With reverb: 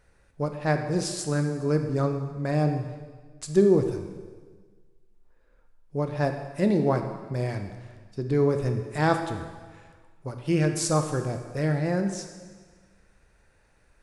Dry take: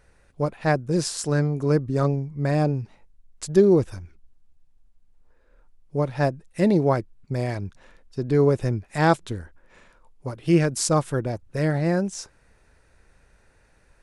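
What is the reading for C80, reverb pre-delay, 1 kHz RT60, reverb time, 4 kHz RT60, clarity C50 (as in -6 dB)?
9.0 dB, 6 ms, 1.4 s, 1.5 s, 1.4 s, 7.0 dB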